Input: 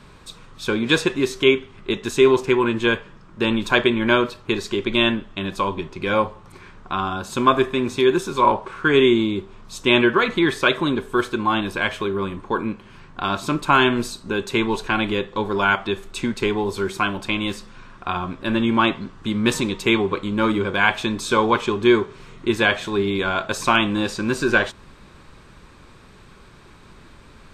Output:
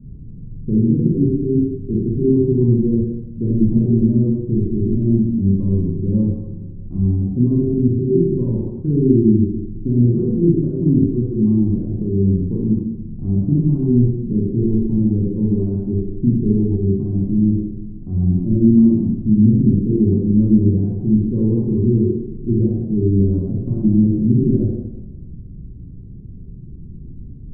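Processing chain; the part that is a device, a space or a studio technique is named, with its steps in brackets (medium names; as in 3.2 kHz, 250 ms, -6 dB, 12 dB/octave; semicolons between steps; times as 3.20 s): club heard from the street (peak limiter -10 dBFS, peak gain reduction 8 dB; low-pass 250 Hz 24 dB/octave; reverberation RT60 1.1 s, pre-delay 30 ms, DRR -4.5 dB); trim +8 dB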